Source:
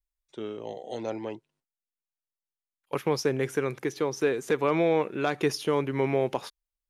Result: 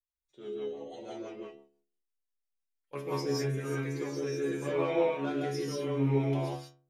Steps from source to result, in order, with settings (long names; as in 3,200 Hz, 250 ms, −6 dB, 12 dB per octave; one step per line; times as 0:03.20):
stiff-string resonator 68 Hz, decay 0.56 s, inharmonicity 0.002
reverb whose tail is shaped and stops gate 210 ms rising, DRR −4 dB
rotating-speaker cabinet horn 6 Hz, later 0.8 Hz, at 0:02.91
level +2 dB